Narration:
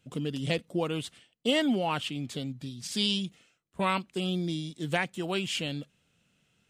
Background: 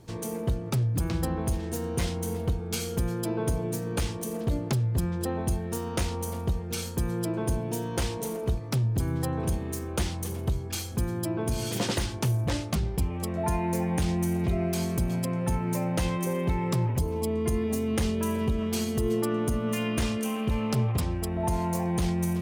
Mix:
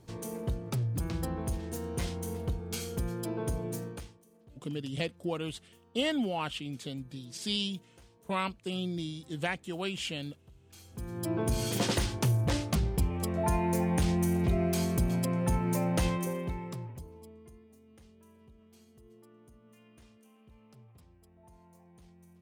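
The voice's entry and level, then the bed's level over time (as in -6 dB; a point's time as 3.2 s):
4.50 s, -4.0 dB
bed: 3.83 s -5.5 dB
4.24 s -29.5 dB
10.52 s -29.5 dB
11.33 s -1 dB
16.07 s -1 dB
17.72 s -31 dB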